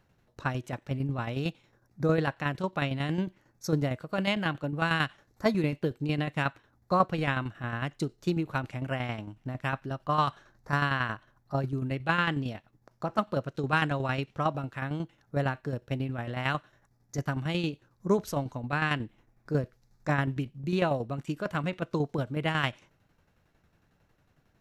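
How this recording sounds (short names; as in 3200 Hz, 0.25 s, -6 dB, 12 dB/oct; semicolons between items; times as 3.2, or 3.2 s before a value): tremolo saw down 11 Hz, depth 60%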